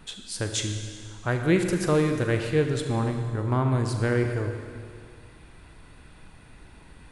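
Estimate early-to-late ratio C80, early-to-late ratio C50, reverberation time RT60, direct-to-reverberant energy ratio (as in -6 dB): 6.5 dB, 5.5 dB, 2.1 s, 4.5 dB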